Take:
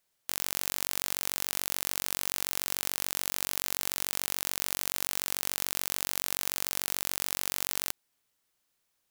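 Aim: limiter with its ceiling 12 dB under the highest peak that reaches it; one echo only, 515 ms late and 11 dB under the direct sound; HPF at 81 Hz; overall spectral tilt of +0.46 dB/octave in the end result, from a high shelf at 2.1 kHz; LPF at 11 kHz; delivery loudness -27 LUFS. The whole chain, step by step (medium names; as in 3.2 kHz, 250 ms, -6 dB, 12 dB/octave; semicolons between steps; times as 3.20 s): high-pass 81 Hz; low-pass 11 kHz; treble shelf 2.1 kHz +7 dB; peak limiter -15.5 dBFS; delay 515 ms -11 dB; trim +13 dB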